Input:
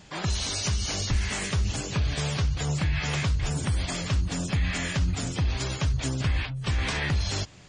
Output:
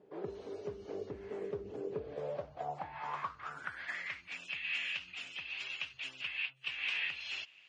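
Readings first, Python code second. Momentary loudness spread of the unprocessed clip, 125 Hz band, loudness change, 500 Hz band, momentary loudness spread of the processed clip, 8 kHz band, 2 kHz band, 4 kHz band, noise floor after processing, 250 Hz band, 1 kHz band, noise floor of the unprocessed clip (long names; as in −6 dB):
2 LU, −30.0 dB, −12.0 dB, −3.5 dB, 9 LU, −28.5 dB, −5.5 dB, −10.0 dB, −61 dBFS, −18.5 dB, −6.5 dB, −37 dBFS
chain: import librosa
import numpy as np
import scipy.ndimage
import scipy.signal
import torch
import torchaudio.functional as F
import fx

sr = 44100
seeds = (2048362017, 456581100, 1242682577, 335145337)

y = fx.highpass(x, sr, hz=120.0, slope=6)
y = fx.high_shelf(y, sr, hz=4200.0, db=-7.5)
y = fx.filter_sweep_bandpass(y, sr, from_hz=420.0, to_hz=2700.0, start_s=1.94, end_s=4.47, q=7.2)
y = y * 10.0 ** (6.5 / 20.0)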